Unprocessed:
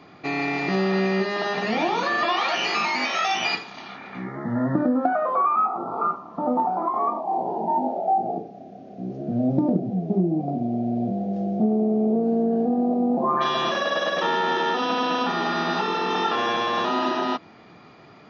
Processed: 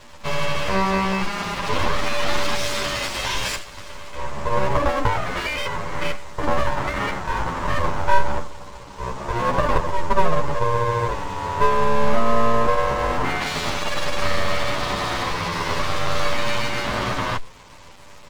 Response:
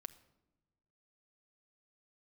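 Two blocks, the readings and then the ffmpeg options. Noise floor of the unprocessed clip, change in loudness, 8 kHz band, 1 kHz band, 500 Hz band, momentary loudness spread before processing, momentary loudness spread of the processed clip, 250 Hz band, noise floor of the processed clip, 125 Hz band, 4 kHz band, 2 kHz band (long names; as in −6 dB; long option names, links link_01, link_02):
−48 dBFS, 0.0 dB, can't be measured, +0.5 dB, +1.5 dB, 7 LU, 8 LU, −7.0 dB, −41 dBFS, +4.0 dB, +2.0 dB, +2.5 dB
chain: -filter_complex "[0:a]aeval=exprs='val(0)*sin(2*PI*290*n/s)':channel_layout=same,aresample=16000,acrusher=bits=7:mix=0:aa=0.000001,aresample=44100,equalizer=frequency=125:width_type=o:width=1:gain=-7,equalizer=frequency=500:width_type=o:width=1:gain=9,equalizer=frequency=1000:width_type=o:width=1:gain=-6,aeval=exprs='abs(val(0))':channel_layout=same,asplit=2[link_01][link_02];[link_02]adelay=9.7,afreqshift=-0.5[link_03];[link_01][link_03]amix=inputs=2:normalize=1,volume=8.5dB"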